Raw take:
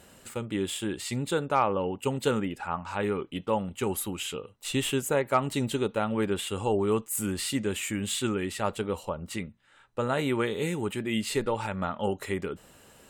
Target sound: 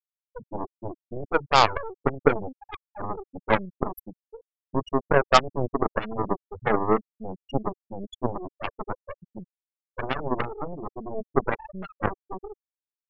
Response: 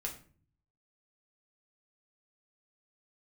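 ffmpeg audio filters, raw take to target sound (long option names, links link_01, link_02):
-af "aresample=32000,aresample=44100,afftfilt=real='re*gte(hypot(re,im),0.178)':imag='im*gte(hypot(re,im),0.178)':win_size=1024:overlap=0.75,aeval=exprs='0.266*(cos(1*acos(clip(val(0)/0.266,-1,1)))-cos(1*PI/2))+0.0376*(cos(4*acos(clip(val(0)/0.266,-1,1)))-cos(4*PI/2))+0.0531*(cos(5*acos(clip(val(0)/0.266,-1,1)))-cos(5*PI/2))+0.0531*(cos(6*acos(clip(val(0)/0.266,-1,1)))-cos(6*PI/2))+0.0944*(cos(7*acos(clip(val(0)/0.266,-1,1)))-cos(7*PI/2))':channel_layout=same,volume=7dB"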